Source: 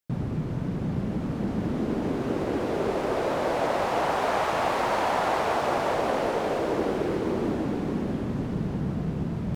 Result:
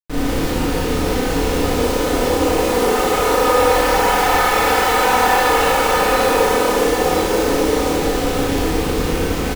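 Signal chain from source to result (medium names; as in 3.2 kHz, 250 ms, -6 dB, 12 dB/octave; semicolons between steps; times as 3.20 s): comb filter that takes the minimum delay 2.3 ms; hum notches 60/120/180/240/300 Hz; comb 4 ms, depth 70%; in parallel at +3 dB: peak limiter -23 dBFS, peak gain reduction 10 dB; on the sum: bit crusher 5-bit; Schroeder reverb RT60 1.2 s, combs from 25 ms, DRR -8 dB; trim -3 dB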